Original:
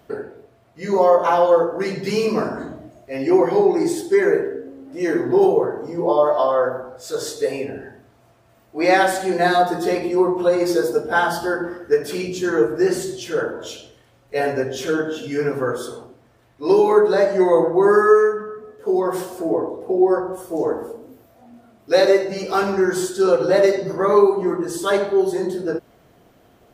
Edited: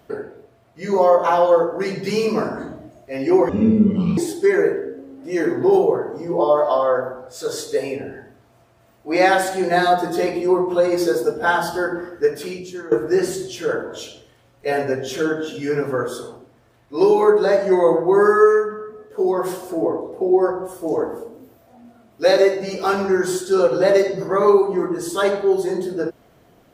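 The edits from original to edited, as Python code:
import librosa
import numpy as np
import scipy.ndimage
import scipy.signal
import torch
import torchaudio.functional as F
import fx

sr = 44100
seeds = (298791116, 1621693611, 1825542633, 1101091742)

y = fx.edit(x, sr, fx.speed_span(start_s=3.49, length_s=0.37, speed=0.54),
    fx.fade_out_to(start_s=11.87, length_s=0.73, floor_db=-16.5), tone=tone)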